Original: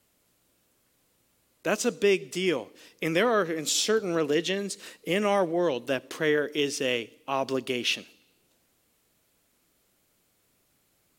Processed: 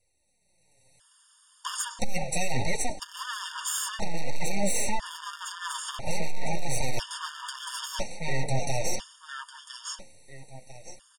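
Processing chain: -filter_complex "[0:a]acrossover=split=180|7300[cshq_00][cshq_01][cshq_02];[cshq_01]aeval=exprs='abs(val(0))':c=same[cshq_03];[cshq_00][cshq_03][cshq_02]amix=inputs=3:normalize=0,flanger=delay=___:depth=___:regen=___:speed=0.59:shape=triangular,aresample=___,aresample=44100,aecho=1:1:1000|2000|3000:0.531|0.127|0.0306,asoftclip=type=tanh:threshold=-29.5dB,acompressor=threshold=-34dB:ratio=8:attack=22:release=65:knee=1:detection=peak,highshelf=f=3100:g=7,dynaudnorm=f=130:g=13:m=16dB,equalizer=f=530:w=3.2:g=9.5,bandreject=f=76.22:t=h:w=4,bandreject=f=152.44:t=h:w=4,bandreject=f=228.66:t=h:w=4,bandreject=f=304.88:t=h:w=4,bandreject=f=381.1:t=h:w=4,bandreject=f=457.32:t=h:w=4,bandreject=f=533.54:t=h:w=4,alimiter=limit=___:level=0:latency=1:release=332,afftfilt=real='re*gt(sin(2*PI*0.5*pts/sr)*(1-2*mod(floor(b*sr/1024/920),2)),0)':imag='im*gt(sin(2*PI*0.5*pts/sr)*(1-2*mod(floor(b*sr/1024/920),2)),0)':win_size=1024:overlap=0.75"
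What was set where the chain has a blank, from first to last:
1.7, 6.1, 7, 22050, -15dB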